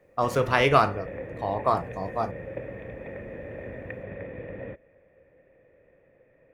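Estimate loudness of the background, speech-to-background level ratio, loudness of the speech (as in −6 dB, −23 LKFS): −38.5 LKFS, 13.5 dB, −25.0 LKFS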